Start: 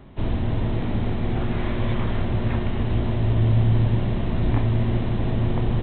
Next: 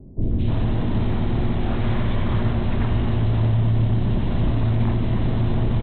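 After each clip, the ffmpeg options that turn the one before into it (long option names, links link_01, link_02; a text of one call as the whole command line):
ffmpeg -i in.wav -filter_complex "[0:a]alimiter=limit=-16.5dB:level=0:latency=1:release=23,acrossover=split=510|2200[link_01][link_02][link_03];[link_03]adelay=220[link_04];[link_02]adelay=310[link_05];[link_01][link_05][link_04]amix=inputs=3:normalize=0,volume=4dB" out.wav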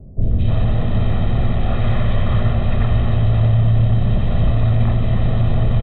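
ffmpeg -i in.wav -af "aecho=1:1:1.6:0.62,volume=2dB" out.wav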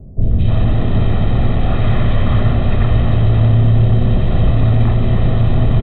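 ffmpeg -i in.wav -filter_complex "[0:a]equalizer=frequency=550:width_type=o:width=0.27:gain=-2,asplit=6[link_01][link_02][link_03][link_04][link_05][link_06];[link_02]adelay=185,afreqshift=130,volume=-18dB[link_07];[link_03]adelay=370,afreqshift=260,volume=-22.6dB[link_08];[link_04]adelay=555,afreqshift=390,volume=-27.2dB[link_09];[link_05]adelay=740,afreqshift=520,volume=-31.7dB[link_10];[link_06]adelay=925,afreqshift=650,volume=-36.3dB[link_11];[link_01][link_07][link_08][link_09][link_10][link_11]amix=inputs=6:normalize=0,volume=3dB" out.wav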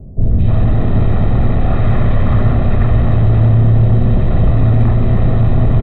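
ffmpeg -i in.wav -filter_complex "[0:a]equalizer=frequency=3200:width=2:gain=-10,asplit=2[link_01][link_02];[link_02]asoftclip=type=hard:threshold=-12dB,volume=-6dB[link_03];[link_01][link_03]amix=inputs=2:normalize=0,volume=-1dB" out.wav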